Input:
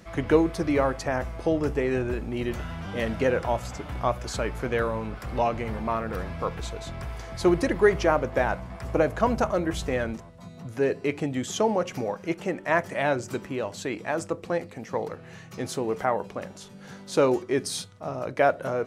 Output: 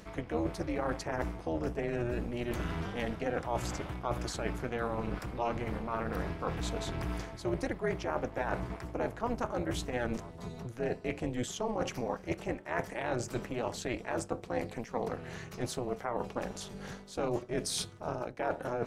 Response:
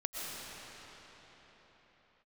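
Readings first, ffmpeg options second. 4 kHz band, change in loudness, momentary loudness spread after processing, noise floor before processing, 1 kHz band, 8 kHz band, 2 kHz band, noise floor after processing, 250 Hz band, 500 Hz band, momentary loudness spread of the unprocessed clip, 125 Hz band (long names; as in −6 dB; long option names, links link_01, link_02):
−5.0 dB, −9.0 dB, 4 LU, −46 dBFS, −8.0 dB, −4.0 dB, −9.0 dB, −49 dBFS, −8.0 dB, −10.0 dB, 13 LU, −5.5 dB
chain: -af "areverse,acompressor=threshold=-33dB:ratio=6,areverse,tremolo=f=240:d=0.919,volume=5.5dB"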